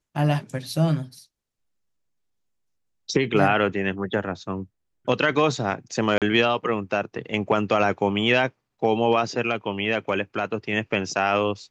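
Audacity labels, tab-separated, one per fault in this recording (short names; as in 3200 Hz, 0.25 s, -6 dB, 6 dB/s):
6.180000	6.220000	gap 37 ms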